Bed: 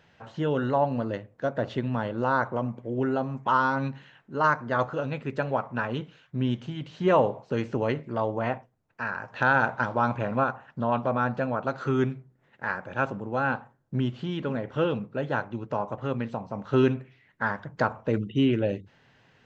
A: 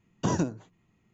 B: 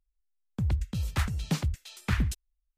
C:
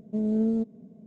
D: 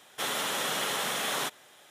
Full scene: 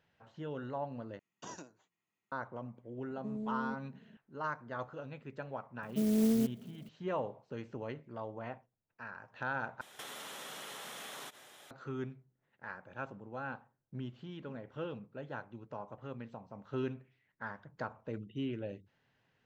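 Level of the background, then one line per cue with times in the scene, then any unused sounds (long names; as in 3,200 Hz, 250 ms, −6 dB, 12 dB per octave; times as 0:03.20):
bed −15 dB
0:01.19: overwrite with A −12 dB + high-pass filter 1,100 Hz 6 dB per octave
0:03.11: mix in C −9 dB + downward compressor 2.5 to 1, threshold −29 dBFS
0:05.83: mix in C −3.5 dB + converter with an unsteady clock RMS 0.075 ms
0:09.81: overwrite with D −1 dB + downward compressor 16 to 1, threshold −41 dBFS
not used: B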